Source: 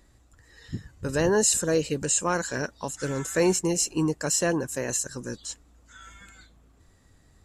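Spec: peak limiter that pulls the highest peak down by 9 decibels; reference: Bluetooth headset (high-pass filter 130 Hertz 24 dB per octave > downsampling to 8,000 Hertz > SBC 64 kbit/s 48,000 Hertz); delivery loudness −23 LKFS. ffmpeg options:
ffmpeg -i in.wav -af "alimiter=limit=-18dB:level=0:latency=1,highpass=frequency=130:width=0.5412,highpass=frequency=130:width=1.3066,aresample=8000,aresample=44100,volume=7.5dB" -ar 48000 -c:a sbc -b:a 64k out.sbc

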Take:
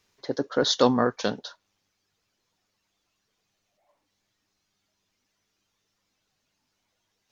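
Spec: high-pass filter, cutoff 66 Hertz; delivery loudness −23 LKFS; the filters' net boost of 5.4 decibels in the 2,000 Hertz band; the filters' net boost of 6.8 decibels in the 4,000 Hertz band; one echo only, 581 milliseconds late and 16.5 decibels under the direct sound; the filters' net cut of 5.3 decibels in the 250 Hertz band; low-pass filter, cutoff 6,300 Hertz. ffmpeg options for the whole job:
ffmpeg -i in.wav -af "highpass=66,lowpass=6300,equalizer=frequency=250:width_type=o:gain=-6,equalizer=frequency=2000:width_type=o:gain=7,equalizer=frequency=4000:width_type=o:gain=6.5,aecho=1:1:581:0.15" out.wav

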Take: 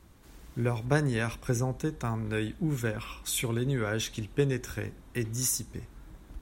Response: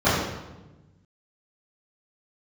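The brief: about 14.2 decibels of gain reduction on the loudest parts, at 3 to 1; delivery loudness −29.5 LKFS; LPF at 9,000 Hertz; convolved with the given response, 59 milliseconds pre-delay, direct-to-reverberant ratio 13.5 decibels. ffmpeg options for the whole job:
-filter_complex "[0:a]lowpass=9000,acompressor=threshold=-40dB:ratio=3,asplit=2[link_01][link_02];[1:a]atrim=start_sample=2205,adelay=59[link_03];[link_02][link_03]afir=irnorm=-1:irlink=0,volume=-34.5dB[link_04];[link_01][link_04]amix=inputs=2:normalize=0,volume=12dB"

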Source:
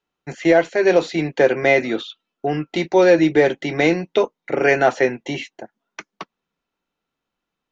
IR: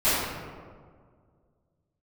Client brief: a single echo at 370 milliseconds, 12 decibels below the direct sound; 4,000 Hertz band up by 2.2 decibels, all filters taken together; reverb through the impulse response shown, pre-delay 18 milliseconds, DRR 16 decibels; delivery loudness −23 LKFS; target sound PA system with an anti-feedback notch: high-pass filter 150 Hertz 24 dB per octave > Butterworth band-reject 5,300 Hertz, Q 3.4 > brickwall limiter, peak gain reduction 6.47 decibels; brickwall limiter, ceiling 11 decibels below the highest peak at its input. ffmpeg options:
-filter_complex "[0:a]equalizer=frequency=4000:width_type=o:gain=3,alimiter=limit=-14dB:level=0:latency=1,aecho=1:1:370:0.251,asplit=2[link_01][link_02];[1:a]atrim=start_sample=2205,adelay=18[link_03];[link_02][link_03]afir=irnorm=-1:irlink=0,volume=-33dB[link_04];[link_01][link_04]amix=inputs=2:normalize=0,highpass=frequency=150:width=0.5412,highpass=frequency=150:width=1.3066,asuperstop=centerf=5300:order=8:qfactor=3.4,volume=5dB,alimiter=limit=-13dB:level=0:latency=1"

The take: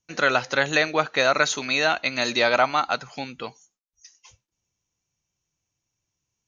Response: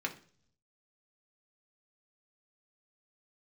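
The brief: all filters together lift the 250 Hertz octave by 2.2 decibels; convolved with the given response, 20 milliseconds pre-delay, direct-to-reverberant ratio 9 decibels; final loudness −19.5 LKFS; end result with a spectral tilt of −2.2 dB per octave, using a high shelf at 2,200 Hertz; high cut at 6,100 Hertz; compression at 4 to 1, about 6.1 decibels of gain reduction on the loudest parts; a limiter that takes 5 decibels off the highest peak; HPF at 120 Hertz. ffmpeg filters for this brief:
-filter_complex "[0:a]highpass=120,lowpass=6100,equalizer=frequency=250:width_type=o:gain=3,highshelf=frequency=2200:gain=-7.5,acompressor=threshold=-23dB:ratio=4,alimiter=limit=-16dB:level=0:latency=1,asplit=2[link_01][link_02];[1:a]atrim=start_sample=2205,adelay=20[link_03];[link_02][link_03]afir=irnorm=-1:irlink=0,volume=-13dB[link_04];[link_01][link_04]amix=inputs=2:normalize=0,volume=10dB"

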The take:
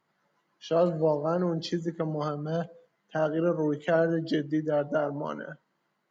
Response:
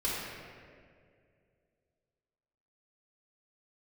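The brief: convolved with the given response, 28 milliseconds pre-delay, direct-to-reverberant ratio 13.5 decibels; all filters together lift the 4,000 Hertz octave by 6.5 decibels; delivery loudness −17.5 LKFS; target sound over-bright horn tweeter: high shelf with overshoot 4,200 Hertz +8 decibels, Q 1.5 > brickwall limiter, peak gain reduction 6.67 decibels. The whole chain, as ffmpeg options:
-filter_complex "[0:a]equalizer=frequency=4000:width_type=o:gain=4.5,asplit=2[link_01][link_02];[1:a]atrim=start_sample=2205,adelay=28[link_03];[link_02][link_03]afir=irnorm=-1:irlink=0,volume=-21dB[link_04];[link_01][link_04]amix=inputs=2:normalize=0,highshelf=frequency=4200:width_type=q:width=1.5:gain=8,volume=13dB,alimiter=limit=-6.5dB:level=0:latency=1"

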